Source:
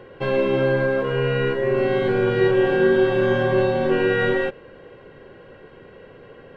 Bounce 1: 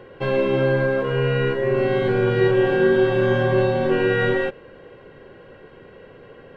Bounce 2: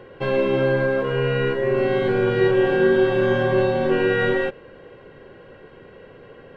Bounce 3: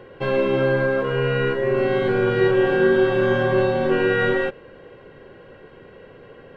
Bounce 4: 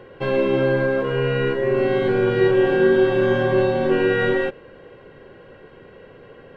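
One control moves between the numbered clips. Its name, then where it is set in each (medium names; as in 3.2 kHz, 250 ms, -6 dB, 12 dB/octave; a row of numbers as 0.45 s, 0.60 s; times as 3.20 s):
dynamic bell, frequency: 120 Hz, 4.6 kHz, 1.3 kHz, 310 Hz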